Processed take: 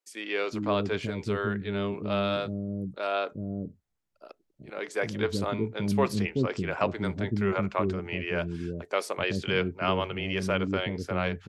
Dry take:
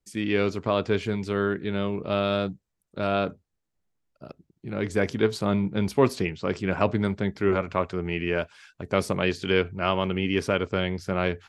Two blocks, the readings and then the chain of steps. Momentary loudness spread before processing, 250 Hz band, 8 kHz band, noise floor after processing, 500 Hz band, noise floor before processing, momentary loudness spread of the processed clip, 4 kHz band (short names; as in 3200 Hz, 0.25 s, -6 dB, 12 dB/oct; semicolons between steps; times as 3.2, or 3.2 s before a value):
5 LU, -3.5 dB, -2.0 dB, -76 dBFS, -4.0 dB, -80 dBFS, 6 LU, -2.0 dB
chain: bands offset in time highs, lows 0.38 s, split 370 Hz; gain -2 dB